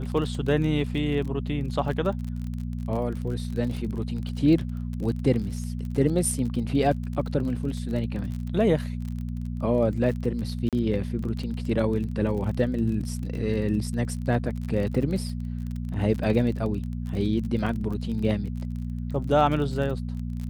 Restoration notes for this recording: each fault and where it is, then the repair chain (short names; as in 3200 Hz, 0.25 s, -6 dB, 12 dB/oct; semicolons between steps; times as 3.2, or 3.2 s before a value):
crackle 33/s -32 dBFS
hum 60 Hz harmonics 4 -31 dBFS
10.69–10.73 gap 37 ms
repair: de-click; de-hum 60 Hz, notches 4; interpolate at 10.69, 37 ms